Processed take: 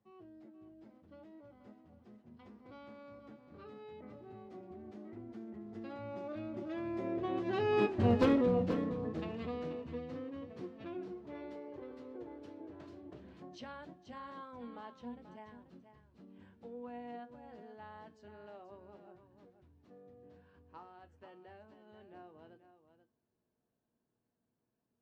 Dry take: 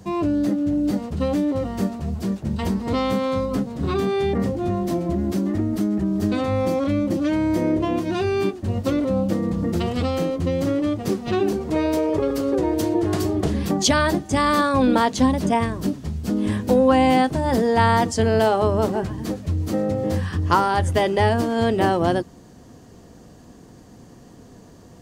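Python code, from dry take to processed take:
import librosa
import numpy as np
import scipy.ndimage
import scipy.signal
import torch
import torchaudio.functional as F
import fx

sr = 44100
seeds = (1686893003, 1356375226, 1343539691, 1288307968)

y = fx.doppler_pass(x, sr, speed_mps=26, closest_m=5.3, pass_at_s=8.1)
y = scipy.signal.sosfilt(scipy.signal.butter(2, 2900.0, 'lowpass', fs=sr, output='sos'), y)
y = fx.low_shelf(y, sr, hz=140.0, db=-10.5)
y = np.clip(10.0 ** (21.0 / 20.0) * y, -1.0, 1.0) / 10.0 ** (21.0 / 20.0)
y = fx.comb_fb(y, sr, f0_hz=120.0, decay_s=0.2, harmonics='all', damping=0.0, mix_pct=60)
y = y + 10.0 ** (-11.0 / 20.0) * np.pad(y, (int(484 * sr / 1000.0), 0))[:len(y)]
y = y * librosa.db_to_amplitude(5.0)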